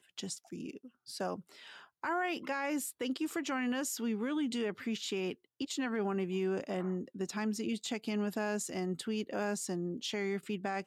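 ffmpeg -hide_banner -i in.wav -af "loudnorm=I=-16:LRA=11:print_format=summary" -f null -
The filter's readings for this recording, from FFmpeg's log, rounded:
Input Integrated:    -36.3 LUFS
Input True Peak:     -23.1 dBTP
Input LRA:             1.4 LU
Input Threshold:     -46.5 LUFS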